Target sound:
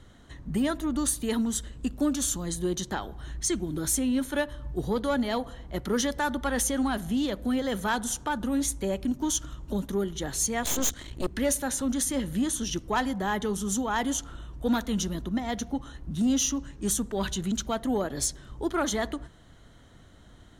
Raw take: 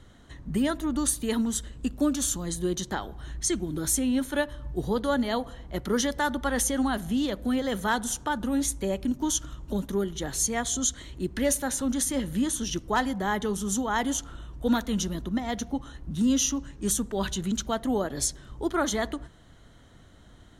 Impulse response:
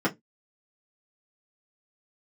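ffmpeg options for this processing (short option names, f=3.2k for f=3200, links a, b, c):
-filter_complex "[0:a]asplit=3[a][b][c];[a]afade=t=out:st=10.62:d=0.02[d];[b]aeval=exprs='0.211*(cos(1*acos(clip(val(0)/0.211,-1,1)))-cos(1*PI/2))+0.0473*(cos(8*acos(clip(val(0)/0.211,-1,1)))-cos(8*PI/2))':c=same,afade=t=in:st=10.62:d=0.02,afade=t=out:st=11.28:d=0.02[e];[c]afade=t=in:st=11.28:d=0.02[f];[d][e][f]amix=inputs=3:normalize=0,asoftclip=type=tanh:threshold=-16dB"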